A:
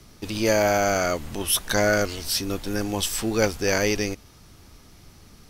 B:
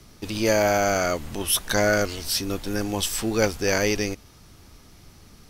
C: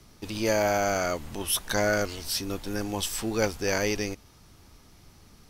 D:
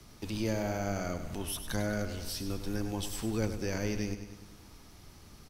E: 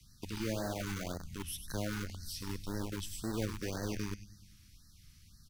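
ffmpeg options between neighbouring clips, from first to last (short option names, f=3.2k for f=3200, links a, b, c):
-af anull
-af "equalizer=f=910:w=2.9:g=2.5,volume=-4.5dB"
-filter_complex "[0:a]acrossover=split=270[a][b];[b]acompressor=threshold=-45dB:ratio=2[c];[a][c]amix=inputs=2:normalize=0,aecho=1:1:100|200|300|400|500|600|700:0.316|0.18|0.103|0.0586|0.0334|0.019|0.0108"
-filter_complex "[0:a]acrossover=split=210|1600|5700[a][b][c][d];[b]acrusher=bits=5:mix=0:aa=0.000001[e];[a][e][c][d]amix=inputs=4:normalize=0,afftfilt=real='re*(1-between(b*sr/1024,570*pow(2800/570,0.5+0.5*sin(2*PI*1.9*pts/sr))/1.41,570*pow(2800/570,0.5+0.5*sin(2*PI*1.9*pts/sr))*1.41))':imag='im*(1-between(b*sr/1024,570*pow(2800/570,0.5+0.5*sin(2*PI*1.9*pts/sr))/1.41,570*pow(2800/570,0.5+0.5*sin(2*PI*1.9*pts/sr))*1.41))':win_size=1024:overlap=0.75,volume=-4.5dB"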